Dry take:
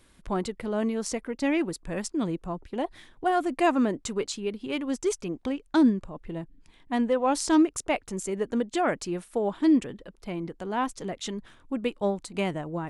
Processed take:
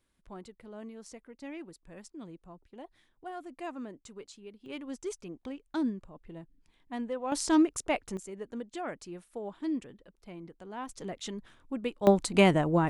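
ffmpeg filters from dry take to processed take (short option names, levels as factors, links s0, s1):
-af "asetnsamples=n=441:p=0,asendcmd='4.66 volume volume -10.5dB;7.32 volume volume -3dB;8.17 volume volume -12dB;10.89 volume volume -5dB;12.07 volume volume 7dB',volume=0.141"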